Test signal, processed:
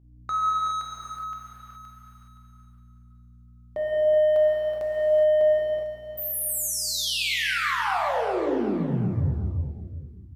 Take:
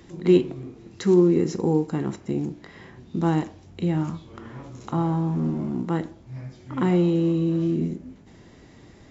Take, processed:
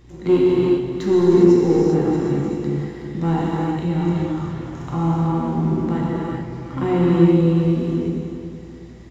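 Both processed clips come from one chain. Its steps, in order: dynamic EQ 6600 Hz, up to -5 dB, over -54 dBFS, Q 1.3; sample leveller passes 1; hum 60 Hz, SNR 24 dB; on a send: feedback echo 0.373 s, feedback 40%, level -10 dB; on the sum: non-linear reverb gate 0.44 s flat, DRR -5.5 dB; gain -5 dB

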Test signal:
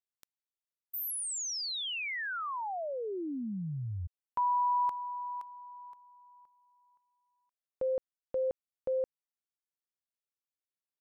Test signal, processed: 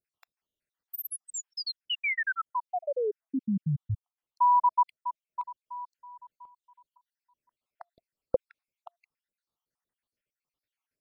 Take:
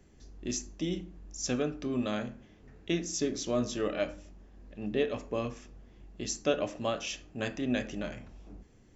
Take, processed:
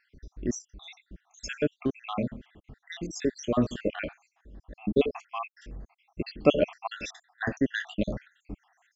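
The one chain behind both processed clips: random spectral dropouts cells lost 72%; tone controls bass +2 dB, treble -9 dB; vocal rider within 5 dB 2 s; gain +7 dB

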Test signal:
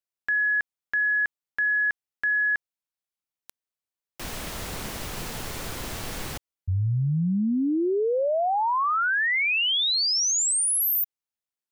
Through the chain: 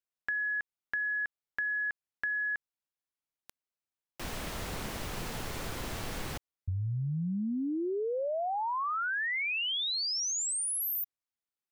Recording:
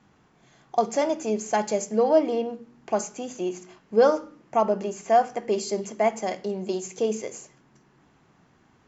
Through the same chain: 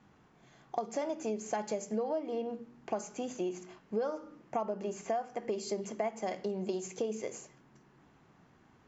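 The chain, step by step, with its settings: high shelf 4100 Hz -5 dB; compressor 10:1, threshold -28 dBFS; gain -2.5 dB

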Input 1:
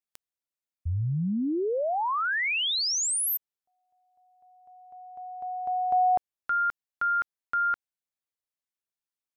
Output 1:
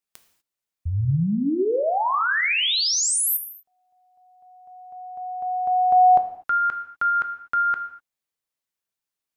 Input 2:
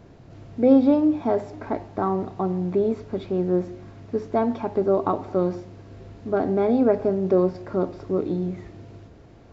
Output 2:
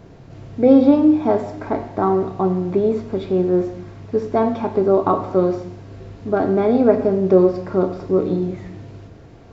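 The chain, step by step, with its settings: non-linear reverb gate 0.27 s falling, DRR 6.5 dB; gain +4.5 dB

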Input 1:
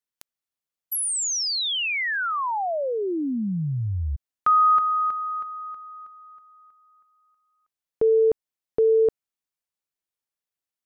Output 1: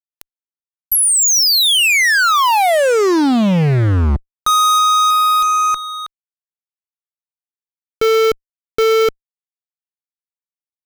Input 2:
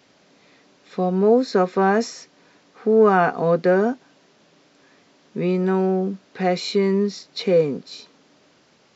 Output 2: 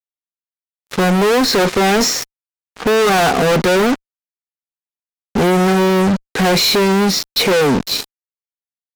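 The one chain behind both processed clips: added harmonics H 2 -25 dB, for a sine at -4 dBFS; fuzz box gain 38 dB, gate -41 dBFS; gain +1.5 dB

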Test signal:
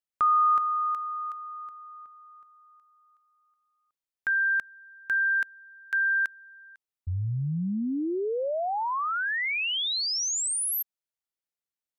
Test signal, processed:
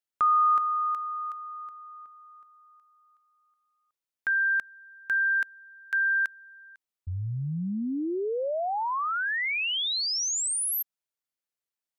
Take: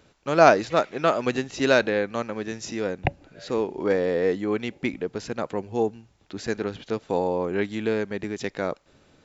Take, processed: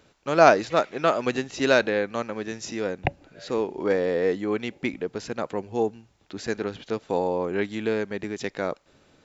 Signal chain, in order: low shelf 180 Hz -3.5 dB

